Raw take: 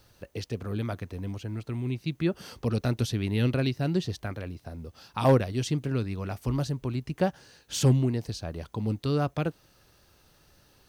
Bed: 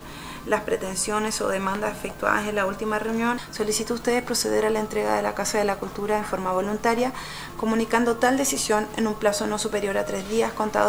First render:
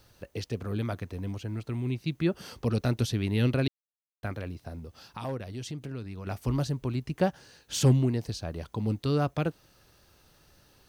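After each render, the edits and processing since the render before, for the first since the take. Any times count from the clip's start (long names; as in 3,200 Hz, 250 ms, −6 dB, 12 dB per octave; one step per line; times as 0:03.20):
0:03.68–0:04.23: silence
0:04.79–0:06.27: downward compressor 2.5 to 1, threshold −38 dBFS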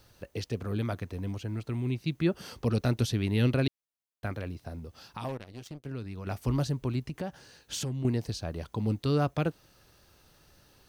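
0:05.28–0:05.86: power curve on the samples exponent 2
0:07.00–0:08.05: downward compressor, threshold −31 dBFS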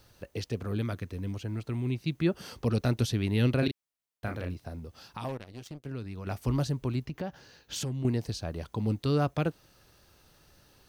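0:00.82–0:01.35: parametric band 780 Hz −7 dB 0.83 octaves
0:03.59–0:04.54: double-tracking delay 34 ms −6.5 dB
0:07.05–0:07.76: parametric band 9,000 Hz −12.5 dB 0.57 octaves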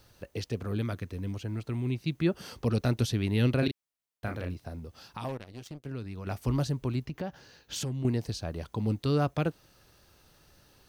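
no processing that can be heard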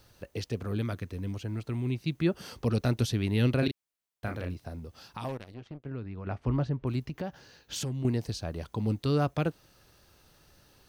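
0:05.54–0:06.87: low-pass filter 2,200 Hz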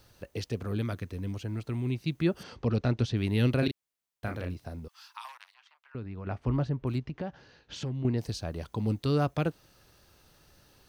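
0:02.43–0:03.17: high-frequency loss of the air 130 metres
0:04.88–0:05.95: elliptic high-pass filter 960 Hz, stop band 80 dB
0:06.98–0:08.18: high-frequency loss of the air 150 metres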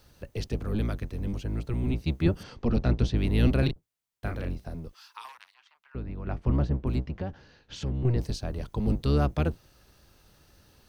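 sub-octave generator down 1 octave, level +2 dB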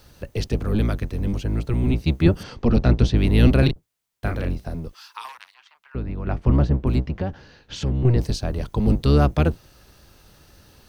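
level +7.5 dB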